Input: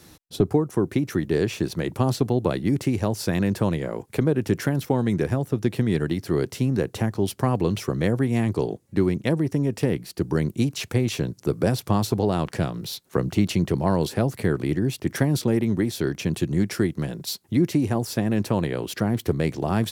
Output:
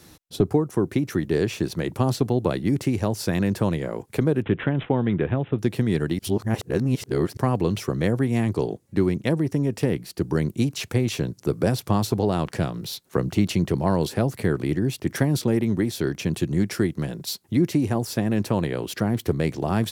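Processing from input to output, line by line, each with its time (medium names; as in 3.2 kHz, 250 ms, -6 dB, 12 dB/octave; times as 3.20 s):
4.42–5.59 s: careless resampling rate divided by 6×, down none, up filtered
6.19–7.37 s: reverse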